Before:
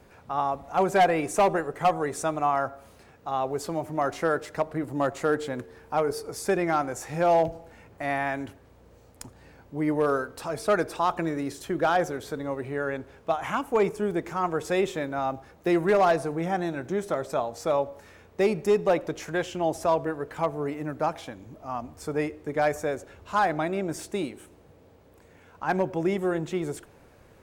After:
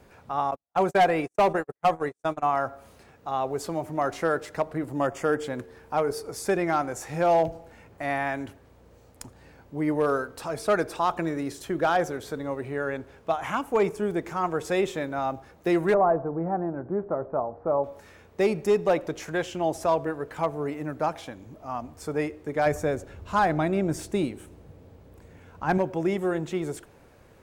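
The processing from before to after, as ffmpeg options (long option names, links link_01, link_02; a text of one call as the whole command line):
ffmpeg -i in.wav -filter_complex "[0:a]asettb=1/sr,asplit=3[link_01][link_02][link_03];[link_01]atrim=end=0.514[link_04];[link_02]atrim=start=0.51:end=2.57,asetpts=PTS-STARTPTS,afade=type=in:duration=0.004:curve=qsin,afade=type=out:start_time=2.056:duration=0.004:curve=qsin,agate=range=-53dB:threshold=-30dB:ratio=16:release=100:detection=peak[link_05];[link_03]atrim=start=2.566[link_06];[link_04][link_05]acrossfade=duration=0.004:curve1=hsin:curve2=qsin[link_07];[link_07][link_06]acrossfade=duration=0.004:curve1=qsin:curve2=hsin,asettb=1/sr,asplit=3[link_08][link_09][link_10];[link_08]atrim=end=4.984[link_11];[link_09]atrim=start=4.98:end=5.44,asetpts=PTS-STARTPTS,afade=type=in:duration=0.004:curve=qsin,afade=type=out:start_time=0.456:duration=0.004:curve=qsin,asuperstop=centerf=4000:order=4:qfactor=4.5[link_12];[link_10]atrim=start=5.436[link_13];[link_11][link_12]acrossfade=duration=0.004:curve1=hsin:curve2=qsin[link_14];[link_14][link_13]acrossfade=duration=0.004:curve1=qsin:curve2=hsin,asettb=1/sr,asplit=3[link_15][link_16][link_17];[link_15]atrim=end=15.944[link_18];[link_16]atrim=start=15.94:end=17.84,asetpts=PTS-STARTPTS,afade=type=in:duration=0.004:curve=qsin,afade=type=out:start_time=1.896:duration=0.004:curve=qsin,lowpass=frequency=1200:width=0.5412,lowpass=frequency=1200:width=1.3066[link_19];[link_17]atrim=start=17.836[link_20];[link_18][link_19]acrossfade=duration=0.004:curve1=hsin:curve2=qsin[link_21];[link_21][link_20]acrossfade=duration=0.004:curve1=qsin:curve2=hsin,asettb=1/sr,asplit=3[link_22][link_23][link_24];[link_22]atrim=end=22.664[link_25];[link_23]atrim=start=22.66:end=25.78,asetpts=PTS-STARTPTS,afade=type=in:duration=0.004:curve=qsin,afade=type=out:start_time=3.116:duration=0.004:curve=qsin,lowshelf=frequency=230:gain=10.5[link_26];[link_24]atrim=start=25.776[link_27];[link_25][link_26]acrossfade=duration=0.004:curve1=hsin:curve2=qsin[link_28];[link_28][link_27]acrossfade=duration=0.004:curve1=qsin:curve2=hsin" out.wav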